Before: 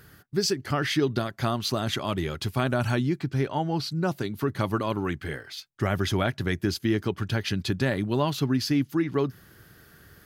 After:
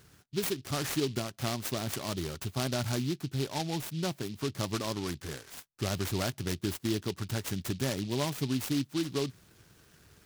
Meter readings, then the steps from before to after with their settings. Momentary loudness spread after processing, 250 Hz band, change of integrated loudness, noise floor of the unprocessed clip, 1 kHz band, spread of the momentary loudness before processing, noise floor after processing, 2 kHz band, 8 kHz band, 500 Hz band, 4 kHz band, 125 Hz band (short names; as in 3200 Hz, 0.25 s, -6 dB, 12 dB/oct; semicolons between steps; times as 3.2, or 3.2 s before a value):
5 LU, -6.5 dB, -6.0 dB, -55 dBFS, -8.5 dB, 5 LU, -63 dBFS, -8.5 dB, +0.5 dB, -7.0 dB, -4.5 dB, -6.5 dB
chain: noise-modulated delay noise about 3600 Hz, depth 0.12 ms; gain -6.5 dB